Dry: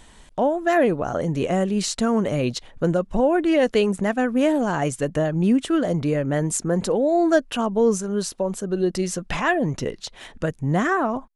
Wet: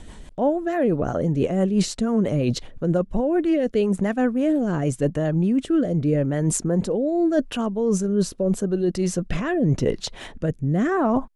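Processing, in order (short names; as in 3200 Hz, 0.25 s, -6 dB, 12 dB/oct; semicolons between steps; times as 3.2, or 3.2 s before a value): tilt shelf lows +4 dB, about 740 Hz; reverse; compressor, threshold -24 dBFS, peak gain reduction 12.5 dB; reverse; rotary speaker horn 6 Hz, later 0.85 Hz, at 2.85; gain +7.5 dB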